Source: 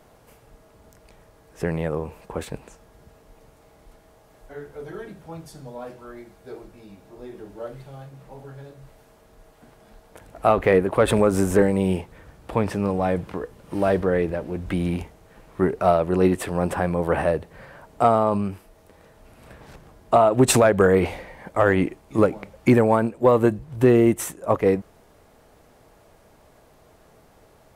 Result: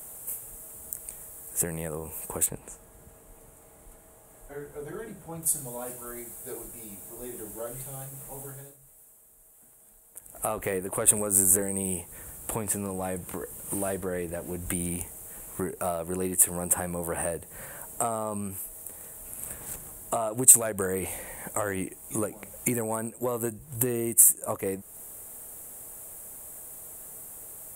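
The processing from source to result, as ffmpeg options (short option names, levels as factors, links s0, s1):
-filter_complex "[0:a]asettb=1/sr,asplit=3[s0][s1][s2];[s0]atrim=end=2.464[s3];[s1]atrim=start=2.46:end=5.43,asetpts=PTS-STARTPTS,afade=t=in:d=0.004:c=qsin,afade=t=out:st=2.966:d=0.004:c=qsin,lowpass=f=2100:p=1[s4];[s2]atrim=start=5.426[s5];[s3][s4]acrossfade=d=0.004:c1=hsin:c2=qsin[s6];[s6][s5]acrossfade=d=0.004:c1=qsin:c2=hsin,asplit=3[s7][s8][s9];[s7]atrim=end=8.78,asetpts=PTS-STARTPTS,afade=t=out:st=8.45:d=0.33:silence=0.211349[s10];[s8]atrim=start=8.78:end=10.23,asetpts=PTS-STARTPTS,volume=0.211[s11];[s9]atrim=start=10.23,asetpts=PTS-STARTPTS,afade=t=in:d=0.33:silence=0.211349[s12];[s10][s11][s12]concat=n=3:v=0:a=1,highshelf=f=6600:t=q:w=3:g=9,acompressor=threshold=0.0282:ratio=2.5,aemphasis=mode=production:type=75fm,volume=0.891"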